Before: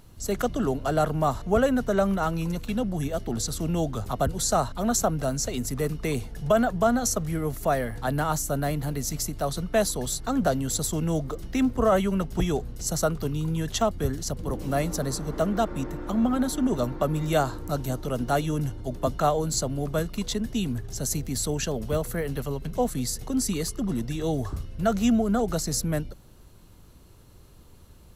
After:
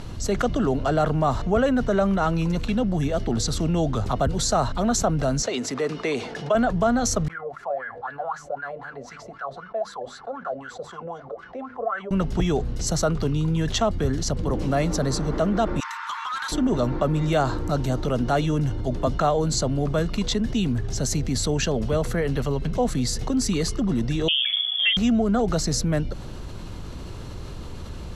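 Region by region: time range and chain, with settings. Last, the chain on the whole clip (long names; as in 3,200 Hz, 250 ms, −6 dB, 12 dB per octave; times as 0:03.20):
0:05.42–0:06.55: high-pass filter 360 Hz + high-frequency loss of the air 56 metres
0:07.28–0:12.11: mains-hum notches 50/100/150/200/250/300 Hz + LFO wah 3.9 Hz 550–1,600 Hz, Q 11 + notch comb filter 310 Hz
0:15.80–0:16.52: Butterworth high-pass 910 Hz 96 dB per octave + floating-point word with a short mantissa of 6 bits + hard clipping −36.5 dBFS
0:24.28–0:24.97: voice inversion scrambler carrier 3,400 Hz + Butterworth high-pass 570 Hz 48 dB per octave
whole clip: low-pass filter 5,600 Hz 12 dB per octave; envelope flattener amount 50%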